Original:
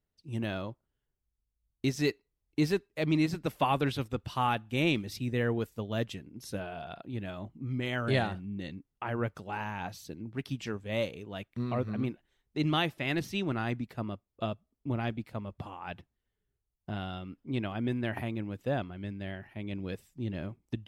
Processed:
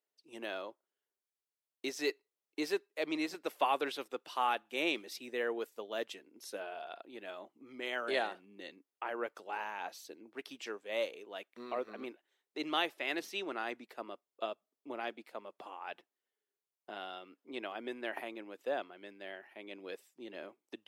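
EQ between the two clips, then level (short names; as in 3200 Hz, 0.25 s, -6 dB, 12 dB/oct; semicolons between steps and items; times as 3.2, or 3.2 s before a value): HPF 360 Hz 24 dB/oct; -2.5 dB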